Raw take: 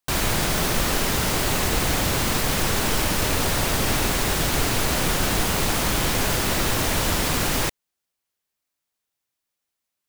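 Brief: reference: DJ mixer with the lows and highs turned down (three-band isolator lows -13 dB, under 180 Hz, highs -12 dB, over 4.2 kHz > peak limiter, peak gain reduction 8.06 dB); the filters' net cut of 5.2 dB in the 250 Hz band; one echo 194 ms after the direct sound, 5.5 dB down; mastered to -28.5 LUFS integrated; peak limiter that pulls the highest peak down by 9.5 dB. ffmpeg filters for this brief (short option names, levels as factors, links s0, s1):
-filter_complex "[0:a]equalizer=f=250:t=o:g=-4.5,alimiter=limit=0.119:level=0:latency=1,acrossover=split=180 4200:gain=0.224 1 0.251[s0][s1][s2];[s0][s1][s2]amix=inputs=3:normalize=0,aecho=1:1:194:0.531,volume=2.11,alimiter=limit=0.1:level=0:latency=1"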